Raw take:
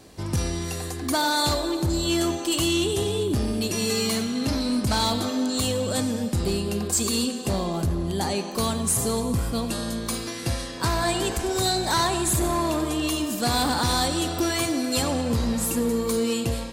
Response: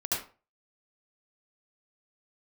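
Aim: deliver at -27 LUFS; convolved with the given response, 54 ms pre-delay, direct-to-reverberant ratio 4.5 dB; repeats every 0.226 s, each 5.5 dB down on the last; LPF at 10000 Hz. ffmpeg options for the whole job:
-filter_complex "[0:a]lowpass=10k,aecho=1:1:226|452|678|904|1130|1356|1582:0.531|0.281|0.149|0.079|0.0419|0.0222|0.0118,asplit=2[a][b];[1:a]atrim=start_sample=2205,adelay=54[c];[b][c]afir=irnorm=-1:irlink=0,volume=-11dB[d];[a][d]amix=inputs=2:normalize=0,volume=-5dB"

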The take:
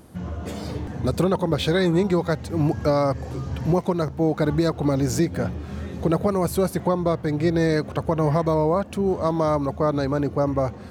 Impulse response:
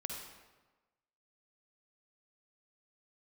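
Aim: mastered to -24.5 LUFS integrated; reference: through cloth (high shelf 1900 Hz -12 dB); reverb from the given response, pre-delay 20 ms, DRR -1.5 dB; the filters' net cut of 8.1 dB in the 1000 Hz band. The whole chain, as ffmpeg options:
-filter_complex "[0:a]equalizer=f=1k:t=o:g=-7.5,asplit=2[a][b];[1:a]atrim=start_sample=2205,adelay=20[c];[b][c]afir=irnorm=-1:irlink=0,volume=1.5dB[d];[a][d]amix=inputs=2:normalize=0,highshelf=f=1.9k:g=-12,volume=-3.5dB"

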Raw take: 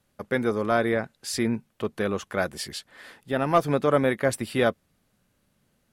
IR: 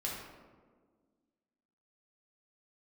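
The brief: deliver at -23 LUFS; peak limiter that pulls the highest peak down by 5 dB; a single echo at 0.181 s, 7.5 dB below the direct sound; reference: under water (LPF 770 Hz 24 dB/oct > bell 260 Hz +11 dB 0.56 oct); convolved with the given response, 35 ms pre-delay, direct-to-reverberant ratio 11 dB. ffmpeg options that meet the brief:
-filter_complex "[0:a]alimiter=limit=-13dB:level=0:latency=1,aecho=1:1:181:0.422,asplit=2[a][b];[1:a]atrim=start_sample=2205,adelay=35[c];[b][c]afir=irnorm=-1:irlink=0,volume=-13.5dB[d];[a][d]amix=inputs=2:normalize=0,lowpass=f=770:w=0.5412,lowpass=f=770:w=1.3066,equalizer=f=260:t=o:w=0.56:g=11,volume=-0.5dB"

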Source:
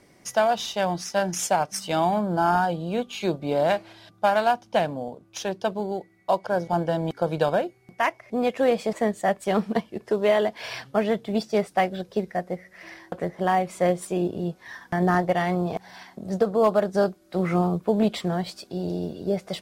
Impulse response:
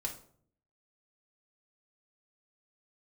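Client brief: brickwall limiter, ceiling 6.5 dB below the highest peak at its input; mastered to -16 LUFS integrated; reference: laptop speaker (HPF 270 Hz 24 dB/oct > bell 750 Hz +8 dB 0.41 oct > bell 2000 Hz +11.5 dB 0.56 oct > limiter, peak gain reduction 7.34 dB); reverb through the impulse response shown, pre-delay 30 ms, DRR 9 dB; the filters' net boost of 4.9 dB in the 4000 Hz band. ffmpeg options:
-filter_complex "[0:a]equalizer=f=4k:t=o:g=4.5,alimiter=limit=-15dB:level=0:latency=1,asplit=2[a][b];[1:a]atrim=start_sample=2205,adelay=30[c];[b][c]afir=irnorm=-1:irlink=0,volume=-10dB[d];[a][d]amix=inputs=2:normalize=0,highpass=f=270:w=0.5412,highpass=f=270:w=1.3066,equalizer=f=750:t=o:w=0.41:g=8,equalizer=f=2k:t=o:w=0.56:g=11.5,volume=10dB,alimiter=limit=-4dB:level=0:latency=1"

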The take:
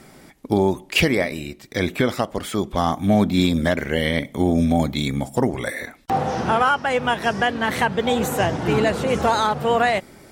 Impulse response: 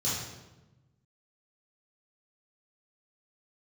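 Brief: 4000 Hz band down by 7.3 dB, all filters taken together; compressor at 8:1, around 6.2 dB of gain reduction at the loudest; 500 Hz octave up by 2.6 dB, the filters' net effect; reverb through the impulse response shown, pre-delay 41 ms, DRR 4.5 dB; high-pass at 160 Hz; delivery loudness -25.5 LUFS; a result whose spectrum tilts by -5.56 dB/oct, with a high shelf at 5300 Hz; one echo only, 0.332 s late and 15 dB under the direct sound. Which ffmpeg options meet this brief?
-filter_complex "[0:a]highpass=160,equalizer=f=500:t=o:g=3.5,equalizer=f=4k:t=o:g=-7.5,highshelf=f=5.3k:g=-8,acompressor=threshold=-19dB:ratio=8,aecho=1:1:332:0.178,asplit=2[a][b];[1:a]atrim=start_sample=2205,adelay=41[c];[b][c]afir=irnorm=-1:irlink=0,volume=-12dB[d];[a][d]amix=inputs=2:normalize=0,volume=-2.5dB"

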